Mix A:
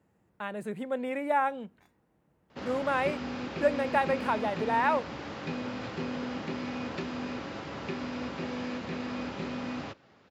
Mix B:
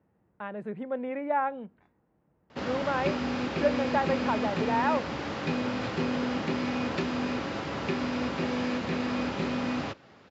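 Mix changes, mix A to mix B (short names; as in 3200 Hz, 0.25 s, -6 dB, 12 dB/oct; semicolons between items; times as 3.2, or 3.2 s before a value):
speech: add Bessel low-pass 1700 Hz, order 2; background +5.5 dB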